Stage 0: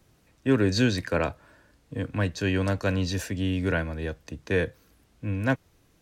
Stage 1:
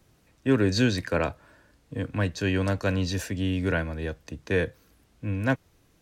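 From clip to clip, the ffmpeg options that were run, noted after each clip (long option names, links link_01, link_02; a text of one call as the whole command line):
ffmpeg -i in.wav -af anull out.wav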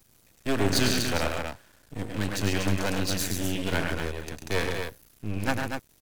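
ffmpeg -i in.wav -af "aecho=1:1:102|137|242:0.501|0.447|0.501,aeval=exprs='max(val(0),0)':channel_layout=same,crystalizer=i=2.5:c=0" out.wav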